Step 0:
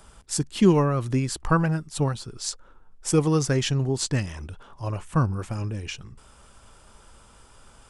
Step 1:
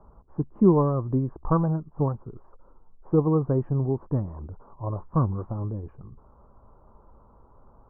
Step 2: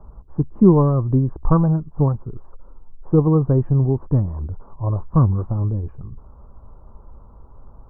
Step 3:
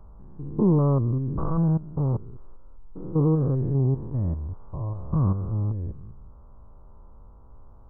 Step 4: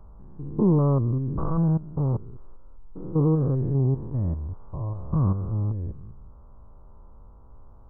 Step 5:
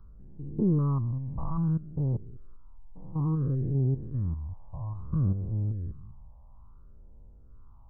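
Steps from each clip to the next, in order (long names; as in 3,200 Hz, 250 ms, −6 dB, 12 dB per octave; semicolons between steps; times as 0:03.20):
elliptic low-pass filter 1,100 Hz, stop band 70 dB
low-shelf EQ 140 Hz +11 dB; level +3 dB
spectrum averaged block by block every 200 ms; level −4 dB
no processing that can be heard
all-pass phaser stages 6, 0.59 Hz, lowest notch 360–1,200 Hz; level −4.5 dB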